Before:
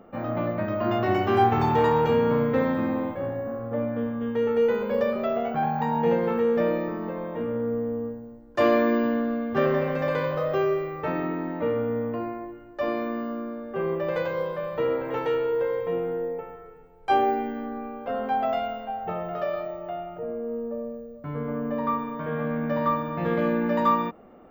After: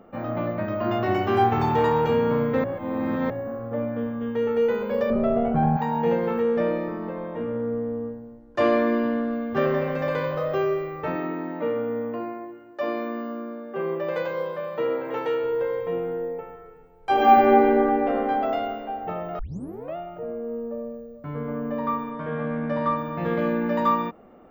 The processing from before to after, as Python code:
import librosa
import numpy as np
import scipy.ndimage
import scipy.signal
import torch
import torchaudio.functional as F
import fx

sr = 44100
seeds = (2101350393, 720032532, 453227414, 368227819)

y = fx.tilt_eq(x, sr, slope=-4.0, at=(5.1, 5.77))
y = fx.high_shelf(y, sr, hz=9000.0, db=-9.5, at=(6.42, 9.33))
y = fx.highpass(y, sr, hz=180.0, slope=12, at=(11.15, 15.44))
y = fx.reverb_throw(y, sr, start_s=17.13, length_s=0.83, rt60_s=3.0, drr_db=-10.5)
y = fx.lowpass(y, sr, hz=7400.0, slope=12, at=(22.1, 22.98))
y = fx.edit(y, sr, fx.reverse_span(start_s=2.64, length_s=0.66),
    fx.tape_start(start_s=19.39, length_s=0.57), tone=tone)